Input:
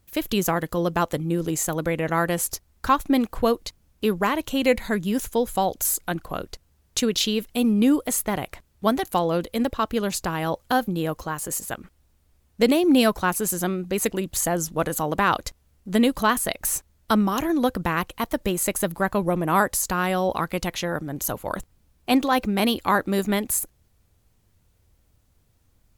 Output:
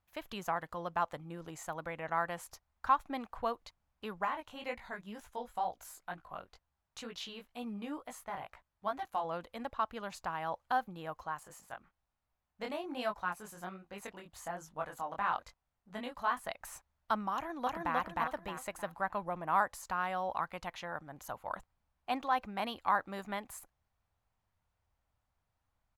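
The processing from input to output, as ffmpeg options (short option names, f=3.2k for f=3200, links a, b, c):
-filter_complex "[0:a]asplit=3[a][b][c];[a]afade=t=out:st=4.24:d=0.02[d];[b]flanger=delay=16.5:depth=5:speed=2.1,afade=t=in:st=4.24:d=0.02,afade=t=out:st=9.23:d=0.02[e];[c]afade=t=in:st=9.23:d=0.02[f];[d][e][f]amix=inputs=3:normalize=0,asettb=1/sr,asplit=3[g][h][i];[g]atrim=end=11.434[j];[h]atrim=start=11.43:end=16.44,asetpts=PTS-STARTPTS,afade=t=in:d=0.004:c=qsin,afade=t=out:st=5.006:d=0.004:c=qsin,flanger=delay=19.5:depth=4.7:speed=1.2[k];[i]atrim=start=16.436[l];[j][k]acrossfade=d=0.004:c1=hsin:c2=qsin[m];[m][l]acrossfade=d=0.004:c1=qsin:c2=hsin,asplit=2[n][o];[o]afade=t=in:st=17.35:d=0.01,afade=t=out:st=17.96:d=0.01,aecho=0:1:310|620|930|1240|1550:0.944061|0.330421|0.115647|0.0404766|0.0141668[p];[n][p]amix=inputs=2:normalize=0,lowpass=f=1.3k:p=1,lowshelf=f=570:t=q:w=1.5:g=-11.5,volume=-8dB"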